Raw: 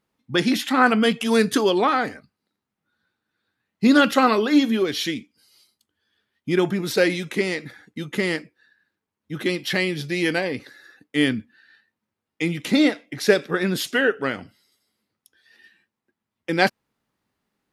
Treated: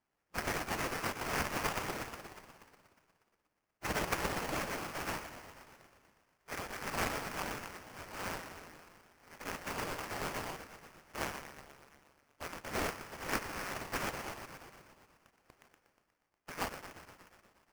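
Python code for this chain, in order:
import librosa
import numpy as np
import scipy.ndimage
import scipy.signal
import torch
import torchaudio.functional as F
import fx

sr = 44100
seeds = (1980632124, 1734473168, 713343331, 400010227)

y = fx.echo_wet_highpass(x, sr, ms=120, feedback_pct=69, hz=1600.0, wet_db=-5.0)
y = fx.spec_gate(y, sr, threshold_db=-20, keep='weak')
y = scipy.signal.lfilter([1.0, -0.9], [1.0], y)
y = fx.sample_hold(y, sr, seeds[0], rate_hz=3800.0, jitter_pct=20)
y = fx.pre_swell(y, sr, db_per_s=95.0, at=(6.51, 9.33))
y = F.gain(torch.from_numpy(y), 1.0).numpy()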